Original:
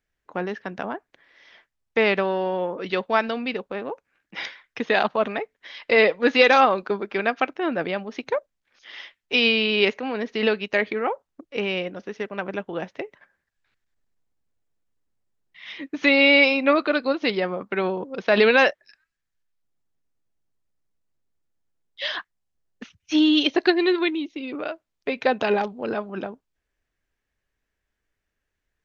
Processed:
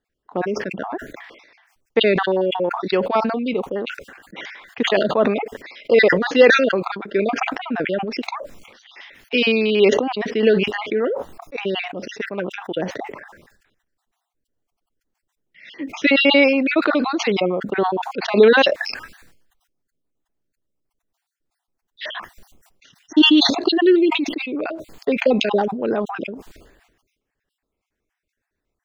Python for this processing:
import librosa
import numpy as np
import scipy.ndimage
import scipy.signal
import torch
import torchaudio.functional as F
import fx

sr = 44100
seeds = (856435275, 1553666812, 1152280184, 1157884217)

y = fx.spec_dropout(x, sr, seeds[0], share_pct=39)
y = fx.peak_eq(y, sr, hz=340.0, db=9.0, octaves=2.5)
y = fx.sustainer(y, sr, db_per_s=55.0)
y = y * librosa.db_to_amplitude(-1.5)